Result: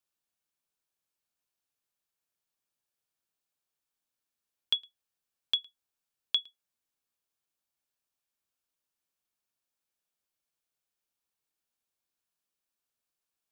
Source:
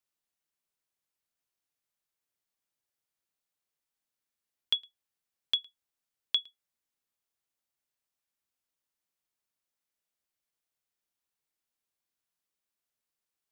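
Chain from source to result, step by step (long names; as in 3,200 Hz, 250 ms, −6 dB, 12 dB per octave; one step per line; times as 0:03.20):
notch filter 2,000 Hz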